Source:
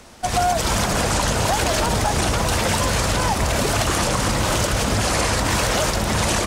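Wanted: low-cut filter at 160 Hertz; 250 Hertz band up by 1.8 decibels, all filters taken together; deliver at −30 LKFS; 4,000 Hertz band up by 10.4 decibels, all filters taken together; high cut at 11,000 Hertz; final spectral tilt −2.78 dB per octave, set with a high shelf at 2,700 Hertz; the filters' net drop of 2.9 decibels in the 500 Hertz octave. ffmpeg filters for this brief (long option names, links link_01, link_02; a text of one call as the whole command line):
ffmpeg -i in.wav -af "highpass=160,lowpass=11000,equalizer=frequency=250:width_type=o:gain=5,equalizer=frequency=500:width_type=o:gain=-5.5,highshelf=frequency=2700:gain=8.5,equalizer=frequency=4000:width_type=o:gain=6,volume=-15.5dB" out.wav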